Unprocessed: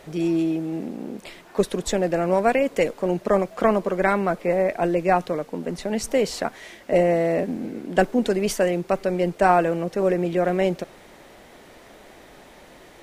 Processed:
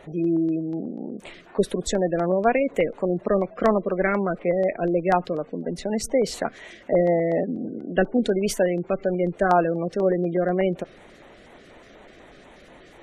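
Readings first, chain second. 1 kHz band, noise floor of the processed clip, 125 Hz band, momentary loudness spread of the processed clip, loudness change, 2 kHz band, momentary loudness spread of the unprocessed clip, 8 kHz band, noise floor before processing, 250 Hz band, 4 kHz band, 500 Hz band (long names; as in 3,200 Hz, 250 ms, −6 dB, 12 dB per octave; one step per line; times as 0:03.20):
−2.5 dB, −49 dBFS, 0.0 dB, 10 LU, −1.0 dB, −2.0 dB, 10 LU, −1.0 dB, −48 dBFS, 0.0 dB, −2.5 dB, −1.0 dB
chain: gate on every frequency bin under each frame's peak −25 dB strong
auto-filter notch square 4.1 Hz 900–5,000 Hz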